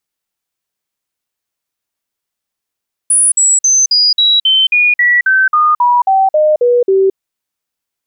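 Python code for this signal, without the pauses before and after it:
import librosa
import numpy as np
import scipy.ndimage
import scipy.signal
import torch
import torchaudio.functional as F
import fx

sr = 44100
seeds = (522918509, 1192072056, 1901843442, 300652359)

y = fx.stepped_sweep(sr, from_hz=9790.0, direction='down', per_octave=3, tones=15, dwell_s=0.22, gap_s=0.05, level_db=-6.5)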